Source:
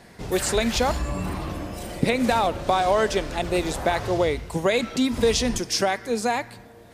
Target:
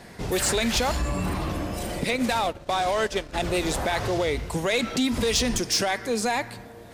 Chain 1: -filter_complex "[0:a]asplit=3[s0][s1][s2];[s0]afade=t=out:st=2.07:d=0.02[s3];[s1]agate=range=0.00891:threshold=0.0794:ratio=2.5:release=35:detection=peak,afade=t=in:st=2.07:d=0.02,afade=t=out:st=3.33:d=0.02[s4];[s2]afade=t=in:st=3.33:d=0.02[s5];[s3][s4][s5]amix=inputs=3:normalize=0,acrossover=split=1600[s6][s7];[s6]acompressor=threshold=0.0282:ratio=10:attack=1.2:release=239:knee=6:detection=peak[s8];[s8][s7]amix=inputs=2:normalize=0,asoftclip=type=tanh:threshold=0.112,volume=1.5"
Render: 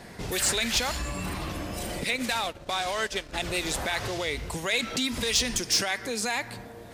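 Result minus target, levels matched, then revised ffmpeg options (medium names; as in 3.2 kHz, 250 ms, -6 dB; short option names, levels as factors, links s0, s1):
compression: peak gain reduction +9 dB
-filter_complex "[0:a]asplit=3[s0][s1][s2];[s0]afade=t=out:st=2.07:d=0.02[s3];[s1]agate=range=0.00891:threshold=0.0794:ratio=2.5:release=35:detection=peak,afade=t=in:st=2.07:d=0.02,afade=t=out:st=3.33:d=0.02[s4];[s2]afade=t=in:st=3.33:d=0.02[s5];[s3][s4][s5]amix=inputs=3:normalize=0,acrossover=split=1600[s6][s7];[s6]acompressor=threshold=0.0891:ratio=10:attack=1.2:release=239:knee=6:detection=peak[s8];[s8][s7]amix=inputs=2:normalize=0,asoftclip=type=tanh:threshold=0.112,volume=1.5"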